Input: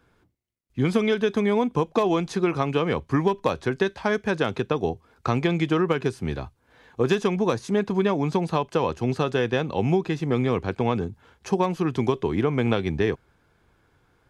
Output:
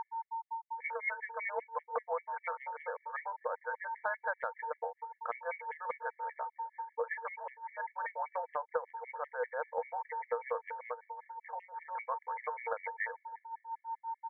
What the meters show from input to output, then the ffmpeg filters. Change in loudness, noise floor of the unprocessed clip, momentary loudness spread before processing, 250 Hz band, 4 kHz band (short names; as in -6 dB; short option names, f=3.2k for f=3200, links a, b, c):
-15.0 dB, -65 dBFS, 6 LU, under -40 dB, under -40 dB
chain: -filter_complex "[0:a]asplit=2[a][b];[b]adelay=279,lowpass=f=1.3k:p=1,volume=-20dB,asplit=2[c][d];[d]adelay=279,lowpass=f=1.3k:p=1,volume=0.33,asplit=2[e][f];[f]adelay=279,lowpass=f=1.3k:p=1,volume=0.33[g];[a][c][e][g]amix=inputs=4:normalize=0,aeval=exprs='val(0)+0.0282*sin(2*PI*910*n/s)':c=same,tremolo=f=5.6:d=0.74,afftfilt=real='re*between(b*sr/4096,460,2300)':imag='im*between(b*sr/4096,460,2300)':win_size=4096:overlap=0.75,acompressor=threshold=-29dB:ratio=8,equalizer=f=740:w=0.98:g=-7.5,afftfilt=real='re*gt(sin(2*PI*5.1*pts/sr)*(1-2*mod(floor(b*sr/1024/1700),2)),0)':imag='im*gt(sin(2*PI*5.1*pts/sr)*(1-2*mod(floor(b*sr/1024/1700),2)),0)':win_size=1024:overlap=0.75,volume=4dB"